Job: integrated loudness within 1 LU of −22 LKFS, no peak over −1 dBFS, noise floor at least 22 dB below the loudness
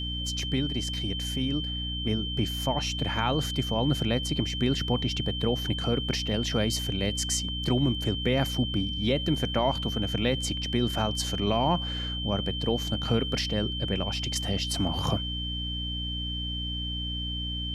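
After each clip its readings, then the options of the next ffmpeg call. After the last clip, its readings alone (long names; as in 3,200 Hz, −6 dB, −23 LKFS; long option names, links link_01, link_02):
mains hum 60 Hz; hum harmonics up to 300 Hz; level of the hum −32 dBFS; interfering tone 3,100 Hz; level of the tone −33 dBFS; integrated loudness −28.0 LKFS; sample peak −12.0 dBFS; target loudness −22.0 LKFS
→ -af "bandreject=frequency=60:width_type=h:width=6,bandreject=frequency=120:width_type=h:width=6,bandreject=frequency=180:width_type=h:width=6,bandreject=frequency=240:width_type=h:width=6,bandreject=frequency=300:width_type=h:width=6"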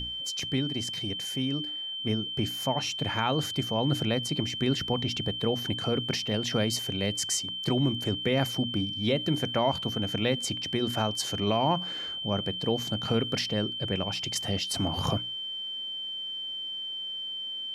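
mains hum none found; interfering tone 3,100 Hz; level of the tone −33 dBFS
→ -af "bandreject=frequency=3100:width=30"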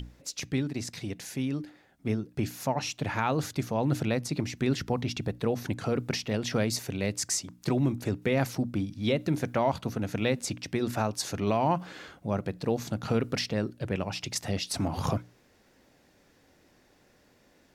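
interfering tone none found; integrated loudness −30.5 LKFS; sample peak −13.0 dBFS; target loudness −22.0 LKFS
→ -af "volume=8.5dB"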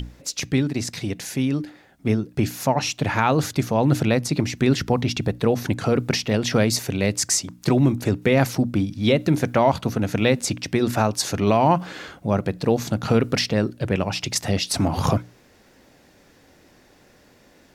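integrated loudness −22.0 LKFS; sample peak −4.5 dBFS; background noise floor −55 dBFS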